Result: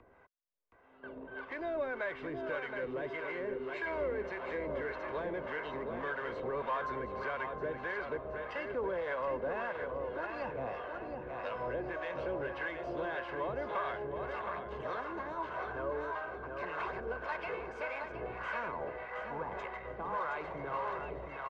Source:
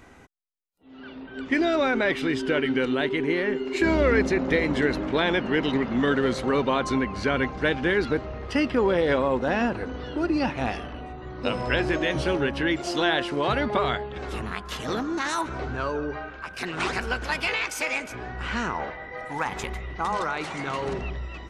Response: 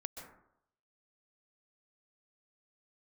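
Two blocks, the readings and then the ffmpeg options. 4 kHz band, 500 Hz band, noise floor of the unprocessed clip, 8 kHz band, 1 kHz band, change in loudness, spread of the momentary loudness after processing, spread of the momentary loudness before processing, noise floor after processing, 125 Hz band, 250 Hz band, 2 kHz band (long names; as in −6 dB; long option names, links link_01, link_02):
−22.0 dB, −10.5 dB, −43 dBFS, below −30 dB, −9.0 dB, −12.5 dB, 5 LU, 11 LU, −51 dBFS, −17.0 dB, −20.0 dB, −12.0 dB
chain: -filter_complex "[0:a]asplit=2[link_01][link_02];[link_02]acrusher=bits=4:mix=0:aa=0.5,volume=-7dB[link_03];[link_01][link_03]amix=inputs=2:normalize=0,acrossover=split=150|390|850[link_04][link_05][link_06][link_07];[link_04]acompressor=threshold=-38dB:ratio=4[link_08];[link_05]acompressor=threshold=-37dB:ratio=4[link_09];[link_06]acompressor=threshold=-34dB:ratio=4[link_10];[link_07]acompressor=threshold=-28dB:ratio=4[link_11];[link_08][link_09][link_10][link_11]amix=inputs=4:normalize=0,aecho=1:1:720|1440|2160|2880|3600:0.473|0.199|0.0835|0.0351|0.0147,asoftclip=type=tanh:threshold=-22.5dB,acrossover=split=650[link_12][link_13];[link_12]aeval=exprs='val(0)*(1-0.7/2+0.7/2*cos(2*PI*1.7*n/s))':channel_layout=same[link_14];[link_13]aeval=exprs='val(0)*(1-0.7/2-0.7/2*cos(2*PI*1.7*n/s))':channel_layout=same[link_15];[link_14][link_15]amix=inputs=2:normalize=0,equalizer=frequency=700:width=1.4:gain=3,aecho=1:1:1.9:0.44,agate=range=-30dB:threshold=-45dB:ratio=16:detection=peak,acompressor=mode=upward:threshold=-33dB:ratio=2.5,lowpass=1500,lowshelf=frequency=240:gain=-9.5,volume=-3.5dB"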